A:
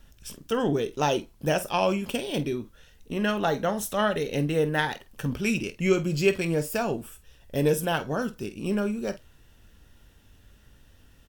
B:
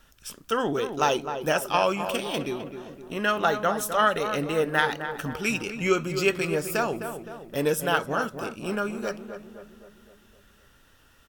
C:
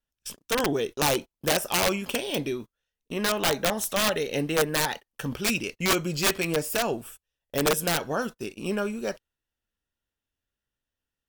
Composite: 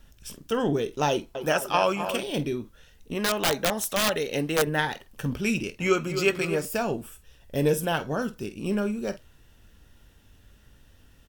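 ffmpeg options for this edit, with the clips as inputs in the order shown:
-filter_complex "[1:a]asplit=2[a][b];[0:a]asplit=4[c][d][e][f];[c]atrim=end=1.352[g];[a]atrim=start=1.348:end=2.232[h];[d]atrim=start=2.228:end=3.152[i];[2:a]atrim=start=3.148:end=4.672[j];[e]atrim=start=4.668:end=5.802[k];[b]atrim=start=5.798:end=6.652[l];[f]atrim=start=6.648[m];[g][h]acrossfade=d=0.004:c1=hsin:c2=hsin[n];[n][i]acrossfade=d=0.004:c1=hsin:c2=hsin[o];[o][j]acrossfade=d=0.004:c1=hsin:c2=hsin[p];[p][k]acrossfade=d=0.004:c1=hsin:c2=hsin[q];[q][l]acrossfade=d=0.004:c1=hsin:c2=hsin[r];[r][m]acrossfade=d=0.004:c1=hsin:c2=hsin"

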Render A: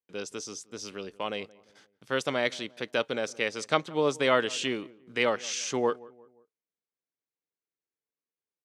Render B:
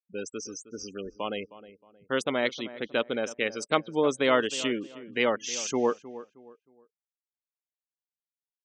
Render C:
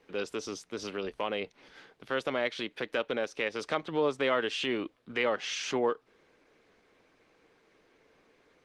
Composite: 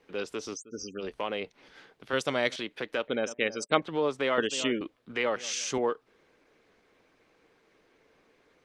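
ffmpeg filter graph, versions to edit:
-filter_complex "[1:a]asplit=3[a][b][c];[0:a]asplit=2[d][e];[2:a]asplit=6[f][g][h][i][j][k];[f]atrim=end=0.57[l];[a]atrim=start=0.53:end=1.03[m];[g]atrim=start=0.99:end=2.132[n];[d]atrim=start=2.128:end=2.562[o];[h]atrim=start=2.558:end=3.082[p];[b]atrim=start=3.078:end=3.822[q];[i]atrim=start=3.818:end=4.382[r];[c]atrim=start=4.378:end=4.812[s];[j]atrim=start=4.808:end=5.362[t];[e]atrim=start=5.358:end=5.782[u];[k]atrim=start=5.778[v];[l][m]acrossfade=d=0.04:c1=tri:c2=tri[w];[w][n]acrossfade=d=0.04:c1=tri:c2=tri[x];[x][o]acrossfade=d=0.004:c1=hsin:c2=hsin[y];[y][p]acrossfade=d=0.004:c1=hsin:c2=hsin[z];[z][q]acrossfade=d=0.004:c1=hsin:c2=hsin[aa];[aa][r]acrossfade=d=0.004:c1=hsin:c2=hsin[ab];[ab][s]acrossfade=d=0.004:c1=hsin:c2=hsin[ac];[ac][t]acrossfade=d=0.004:c1=hsin:c2=hsin[ad];[ad][u]acrossfade=d=0.004:c1=hsin:c2=hsin[ae];[ae][v]acrossfade=d=0.004:c1=hsin:c2=hsin"

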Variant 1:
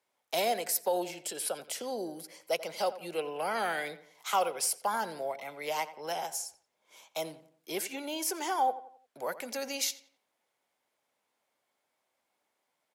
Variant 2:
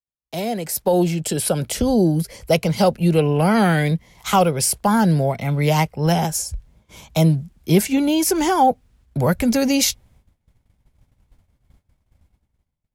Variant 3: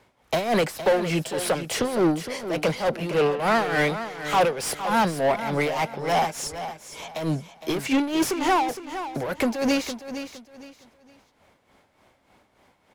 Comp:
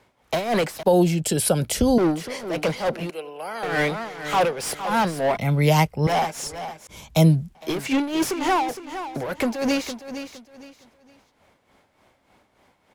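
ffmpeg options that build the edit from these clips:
-filter_complex "[1:a]asplit=3[a][b][c];[2:a]asplit=5[d][e][f][g][h];[d]atrim=end=0.832[i];[a]atrim=start=0.828:end=1.982[j];[e]atrim=start=1.978:end=3.102[k];[0:a]atrim=start=3.098:end=3.632[l];[f]atrim=start=3.628:end=5.372[m];[b]atrim=start=5.368:end=6.072[n];[g]atrim=start=6.068:end=6.872[o];[c]atrim=start=6.868:end=7.552[p];[h]atrim=start=7.548[q];[i][j]acrossfade=d=0.004:c1=hsin:c2=hsin[r];[r][k]acrossfade=d=0.004:c1=hsin:c2=hsin[s];[s][l]acrossfade=d=0.004:c1=hsin:c2=hsin[t];[t][m]acrossfade=d=0.004:c1=hsin:c2=hsin[u];[u][n]acrossfade=d=0.004:c1=hsin:c2=hsin[v];[v][o]acrossfade=d=0.004:c1=hsin:c2=hsin[w];[w][p]acrossfade=d=0.004:c1=hsin:c2=hsin[x];[x][q]acrossfade=d=0.004:c1=hsin:c2=hsin"

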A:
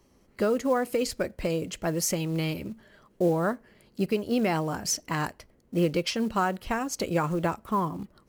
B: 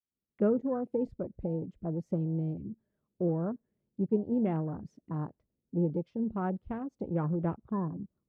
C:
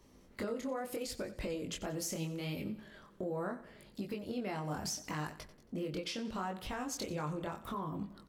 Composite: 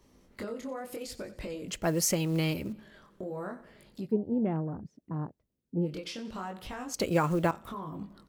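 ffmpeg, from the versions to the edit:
-filter_complex "[0:a]asplit=2[a][b];[2:a]asplit=4[c][d][e][f];[c]atrim=end=1.682[g];[a]atrim=start=1.678:end=2.732[h];[d]atrim=start=2.728:end=4.14[i];[1:a]atrim=start=3.98:end=5.96[j];[e]atrim=start=5.8:end=6.942[k];[b]atrim=start=6.938:end=7.512[l];[f]atrim=start=7.508[m];[g][h]acrossfade=d=0.004:c1=hsin:c2=hsin[n];[n][i]acrossfade=d=0.004:c1=hsin:c2=hsin[o];[o][j]acrossfade=d=0.16:c1=tri:c2=tri[p];[p][k]acrossfade=d=0.16:c1=tri:c2=tri[q];[q][l]acrossfade=d=0.004:c1=hsin:c2=hsin[r];[r][m]acrossfade=d=0.004:c1=hsin:c2=hsin"

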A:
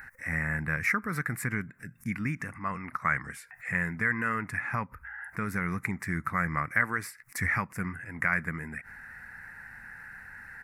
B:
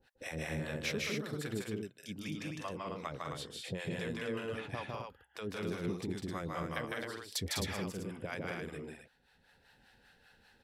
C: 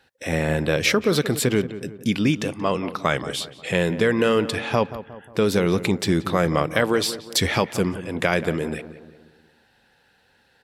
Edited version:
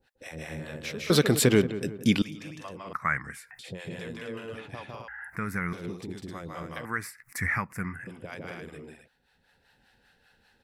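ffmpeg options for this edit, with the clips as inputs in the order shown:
-filter_complex "[0:a]asplit=3[a][b][c];[1:a]asplit=5[d][e][f][g][h];[d]atrim=end=1.102[i];[2:a]atrim=start=1.098:end=2.222[j];[e]atrim=start=2.218:end=2.932[k];[a]atrim=start=2.928:end=3.592[l];[f]atrim=start=3.588:end=5.082[m];[b]atrim=start=5.078:end=5.732[n];[g]atrim=start=5.728:end=6.852[o];[c]atrim=start=6.848:end=8.072[p];[h]atrim=start=8.068[q];[i][j]acrossfade=d=0.004:c1=hsin:c2=hsin[r];[r][k]acrossfade=d=0.004:c1=hsin:c2=hsin[s];[s][l]acrossfade=d=0.004:c1=hsin:c2=hsin[t];[t][m]acrossfade=d=0.004:c1=hsin:c2=hsin[u];[u][n]acrossfade=d=0.004:c1=hsin:c2=hsin[v];[v][o]acrossfade=d=0.004:c1=hsin:c2=hsin[w];[w][p]acrossfade=d=0.004:c1=hsin:c2=hsin[x];[x][q]acrossfade=d=0.004:c1=hsin:c2=hsin"

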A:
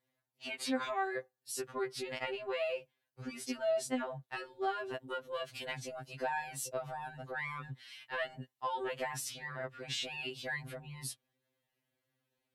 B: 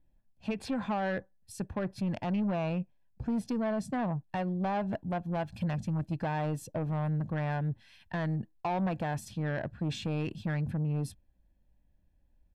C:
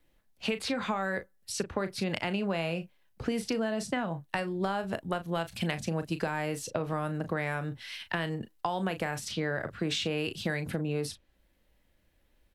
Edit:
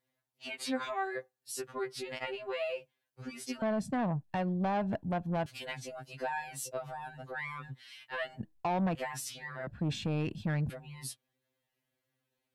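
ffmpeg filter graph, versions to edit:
-filter_complex "[1:a]asplit=3[a][b][c];[0:a]asplit=4[d][e][f][g];[d]atrim=end=3.622[h];[a]atrim=start=3.618:end=5.462[i];[e]atrim=start=5.458:end=8.402[j];[b]atrim=start=8.398:end=8.952[k];[f]atrim=start=8.948:end=9.672[l];[c]atrim=start=9.668:end=10.702[m];[g]atrim=start=10.698[n];[h][i]acrossfade=d=0.004:c1=hsin:c2=hsin[o];[o][j]acrossfade=d=0.004:c1=hsin:c2=hsin[p];[p][k]acrossfade=d=0.004:c1=hsin:c2=hsin[q];[q][l]acrossfade=d=0.004:c1=hsin:c2=hsin[r];[r][m]acrossfade=d=0.004:c1=hsin:c2=hsin[s];[s][n]acrossfade=d=0.004:c1=hsin:c2=hsin"

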